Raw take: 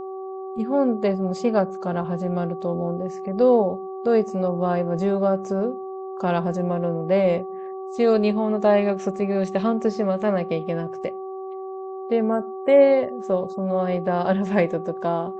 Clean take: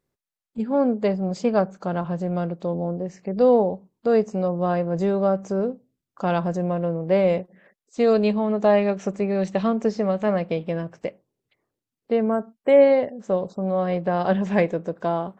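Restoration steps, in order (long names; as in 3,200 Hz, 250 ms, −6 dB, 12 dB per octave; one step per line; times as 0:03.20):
hum removal 381 Hz, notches 3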